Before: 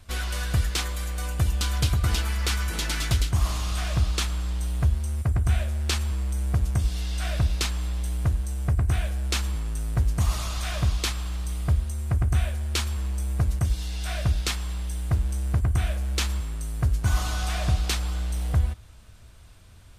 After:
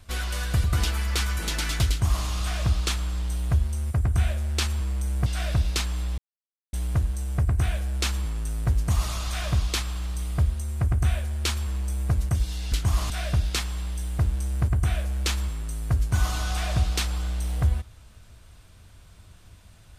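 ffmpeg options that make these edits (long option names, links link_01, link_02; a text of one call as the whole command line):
ffmpeg -i in.wav -filter_complex "[0:a]asplit=6[link_01][link_02][link_03][link_04][link_05][link_06];[link_01]atrim=end=0.642[link_07];[link_02]atrim=start=1.948:end=6.572[link_08];[link_03]atrim=start=7.108:end=8.03,asetpts=PTS-STARTPTS,afade=type=out:start_time=0.918:duration=0.004:curve=hsin,apad=pad_dur=0.55[link_09];[link_04]atrim=start=8.03:end=14.022,asetpts=PTS-STARTPTS,afade=type=in:duration=0.004:curve=hsin[link_10];[link_05]atrim=start=3.198:end=3.582[link_11];[link_06]atrim=start=14.018[link_12];[link_07][link_08]acrossfade=duration=0.004:curve1=hsin:curve2=hsin[link_13];[link_09][link_10]concat=n=2:v=0:a=1[link_14];[link_13][link_14]acrossfade=duration=0.004:curve1=hsin:curve2=hsin[link_15];[link_15][link_11]acrossfade=duration=0.004:curve1=hsin:curve2=hsin[link_16];[link_16][link_12]acrossfade=duration=0.004:curve1=hsin:curve2=hsin" out.wav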